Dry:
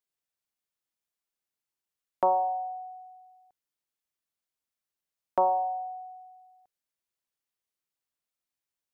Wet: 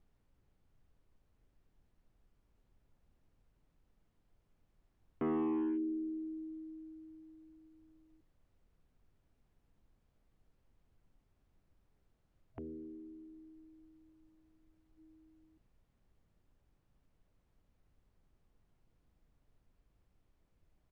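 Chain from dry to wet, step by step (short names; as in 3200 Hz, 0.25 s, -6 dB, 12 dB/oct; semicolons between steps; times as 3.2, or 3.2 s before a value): spectral gain 3.98–6.4, 290–1500 Hz -17 dB; hard clip -25.5 dBFS, distortion -10 dB; downsampling 16000 Hz; speed mistake 78 rpm record played at 33 rpm; added noise brown -64 dBFS; gain -6.5 dB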